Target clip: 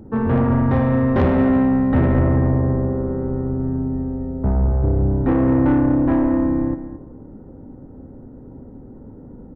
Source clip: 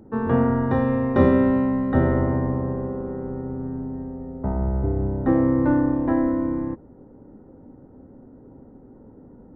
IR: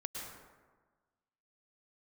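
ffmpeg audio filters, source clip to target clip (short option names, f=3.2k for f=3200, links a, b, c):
-filter_complex "[0:a]lowshelf=f=180:g=8.5,asoftclip=type=tanh:threshold=-15.5dB,asplit=2[a][b];[b]adelay=221.6,volume=-12dB,highshelf=f=4k:g=-4.99[c];[a][c]amix=inputs=2:normalize=0,asplit=2[d][e];[1:a]atrim=start_sample=2205[f];[e][f]afir=irnorm=-1:irlink=0,volume=-12.5dB[g];[d][g]amix=inputs=2:normalize=0,volume=2dB"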